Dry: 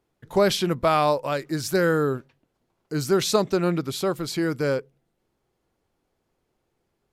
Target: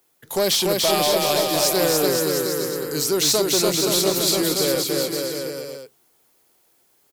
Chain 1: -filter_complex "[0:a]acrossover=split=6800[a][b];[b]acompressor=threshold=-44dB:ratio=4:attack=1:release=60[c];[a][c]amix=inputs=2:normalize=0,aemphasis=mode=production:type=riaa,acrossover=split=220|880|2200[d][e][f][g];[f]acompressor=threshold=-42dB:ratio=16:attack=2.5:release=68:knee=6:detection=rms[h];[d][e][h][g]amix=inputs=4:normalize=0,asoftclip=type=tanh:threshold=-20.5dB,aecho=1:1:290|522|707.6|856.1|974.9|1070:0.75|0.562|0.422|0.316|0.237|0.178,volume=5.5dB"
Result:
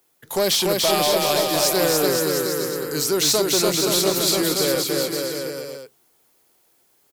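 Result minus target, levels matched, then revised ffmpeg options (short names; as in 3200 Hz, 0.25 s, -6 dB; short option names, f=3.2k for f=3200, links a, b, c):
compressor: peak gain reduction -8 dB
-filter_complex "[0:a]acrossover=split=6800[a][b];[b]acompressor=threshold=-44dB:ratio=4:attack=1:release=60[c];[a][c]amix=inputs=2:normalize=0,aemphasis=mode=production:type=riaa,acrossover=split=220|880|2200[d][e][f][g];[f]acompressor=threshold=-50.5dB:ratio=16:attack=2.5:release=68:knee=6:detection=rms[h];[d][e][h][g]amix=inputs=4:normalize=0,asoftclip=type=tanh:threshold=-20.5dB,aecho=1:1:290|522|707.6|856.1|974.9|1070:0.75|0.562|0.422|0.316|0.237|0.178,volume=5.5dB"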